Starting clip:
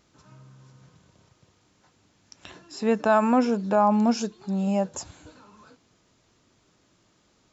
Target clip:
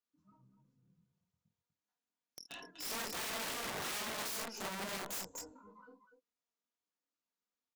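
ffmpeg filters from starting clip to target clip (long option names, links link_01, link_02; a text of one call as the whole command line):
ffmpeg -i in.wav -af "afftdn=noise_reduction=34:noise_floor=-42,aecho=1:1:4.2:0.71,acompressor=threshold=-25dB:ratio=3,aeval=exprs='(tanh(56.2*val(0)+0.75)-tanh(0.75))/56.2':channel_layout=same,flanger=delay=19:depth=7.3:speed=2.7,lowshelf=frequency=330:gain=-8.5,atempo=0.97,aecho=1:1:48|51|246|248:0.398|0.158|0.316|0.141,aeval=exprs='(mod(141*val(0)+1,2)-1)/141':channel_layout=same,lowshelf=frequency=120:gain=-11,volume=8dB" out.wav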